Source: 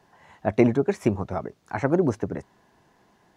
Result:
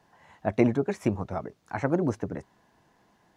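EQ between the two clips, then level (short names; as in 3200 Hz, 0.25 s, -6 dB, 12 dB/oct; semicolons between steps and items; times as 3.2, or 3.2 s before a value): notch 390 Hz, Q 12; -3.0 dB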